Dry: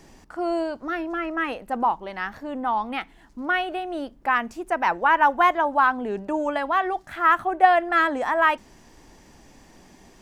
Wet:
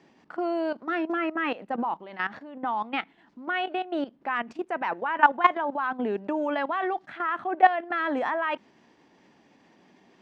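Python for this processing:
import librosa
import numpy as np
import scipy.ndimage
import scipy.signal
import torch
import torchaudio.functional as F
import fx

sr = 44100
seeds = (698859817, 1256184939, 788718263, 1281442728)

y = fx.level_steps(x, sr, step_db=15)
y = scipy.signal.sosfilt(scipy.signal.cheby1(2, 1.0, [200.0, 3300.0], 'bandpass', fs=sr, output='sos'), y)
y = F.gain(torch.from_numpy(y), 3.5).numpy()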